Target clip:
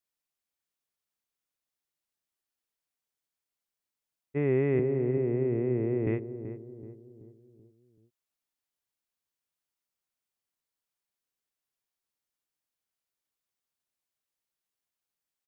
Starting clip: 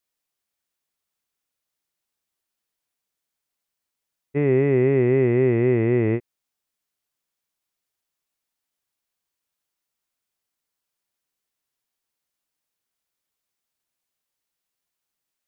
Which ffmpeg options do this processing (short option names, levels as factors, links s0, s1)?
-filter_complex "[0:a]asettb=1/sr,asplit=3[s0][s1][s2];[s0]atrim=end=4.794[s3];[s1]atrim=start=4.79:end=6.07,asetpts=PTS-STARTPTS,afade=t=in:d=0.004:c=qsin,afade=t=out:st=1.276:d=0.004:c=qsin,acrossover=split=270|850[s4][s5][s6];[s4]acompressor=threshold=0.0562:ratio=4[s7];[s5]acompressor=threshold=0.0891:ratio=4[s8];[s6]acompressor=threshold=0.00398:ratio=4[s9];[s7][s8][s9]amix=inputs=3:normalize=0[s10];[s2]atrim=start=6.066[s11];[s3][s10]acrossfade=d=0.004:c1=hsin:c2=qsin[s12];[s12][s11]acrossfade=d=0.004:c1=qsin:c2=hsin,asplit=2[s13][s14];[s14]adelay=381,lowpass=f=810:p=1,volume=0.316,asplit=2[s15][s16];[s16]adelay=381,lowpass=f=810:p=1,volume=0.5,asplit=2[s17][s18];[s18]adelay=381,lowpass=f=810:p=1,volume=0.5,asplit=2[s19][s20];[s20]adelay=381,lowpass=f=810:p=1,volume=0.5,asplit=2[s21][s22];[s22]adelay=381,lowpass=f=810:p=1,volume=0.5[s23];[s13][s15][s17][s19][s21][s23]amix=inputs=6:normalize=0,volume=0.447"